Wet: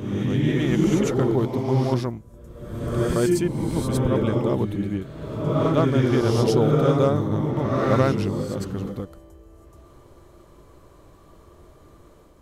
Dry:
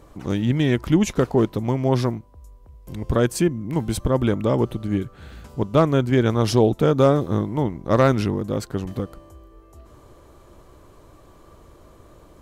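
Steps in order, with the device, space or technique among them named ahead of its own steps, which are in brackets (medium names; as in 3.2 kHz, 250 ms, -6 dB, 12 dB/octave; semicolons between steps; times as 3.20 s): reverse reverb (reverse; reverberation RT60 1.3 s, pre-delay 90 ms, DRR -0.5 dB; reverse); trim -5 dB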